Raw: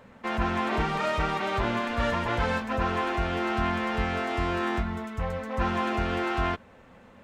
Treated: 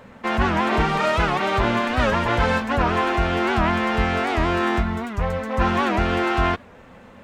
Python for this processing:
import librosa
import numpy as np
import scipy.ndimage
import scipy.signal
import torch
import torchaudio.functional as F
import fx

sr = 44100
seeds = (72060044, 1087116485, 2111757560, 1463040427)

y = fx.record_warp(x, sr, rpm=78.0, depth_cents=160.0)
y = F.gain(torch.from_numpy(y), 7.0).numpy()